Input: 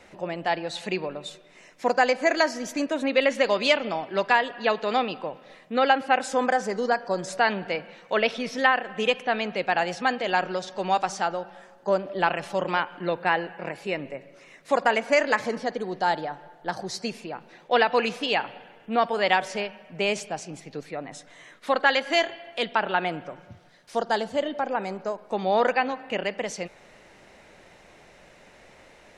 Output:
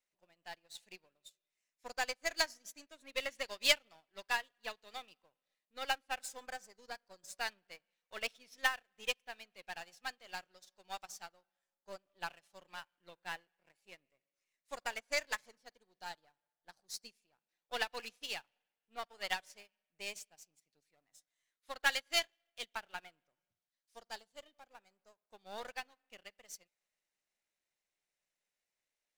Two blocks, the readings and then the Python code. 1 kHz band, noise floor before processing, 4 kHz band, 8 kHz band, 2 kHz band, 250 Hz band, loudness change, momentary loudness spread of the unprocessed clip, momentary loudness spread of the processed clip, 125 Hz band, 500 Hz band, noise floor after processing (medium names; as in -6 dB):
-20.5 dB, -53 dBFS, -9.0 dB, -5.5 dB, -13.5 dB, -29.5 dB, -14.0 dB, 14 LU, 21 LU, -29.0 dB, -22.5 dB, under -85 dBFS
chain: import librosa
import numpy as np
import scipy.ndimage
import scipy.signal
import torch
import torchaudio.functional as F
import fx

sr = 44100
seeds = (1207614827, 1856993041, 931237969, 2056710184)

y = np.where(x < 0.0, 10.0 ** (-7.0 / 20.0) * x, x)
y = librosa.effects.preemphasis(y, coef=0.9, zi=[0.0])
y = fx.upward_expand(y, sr, threshold_db=-53.0, expansion=2.5)
y = y * 10.0 ** (8.0 / 20.0)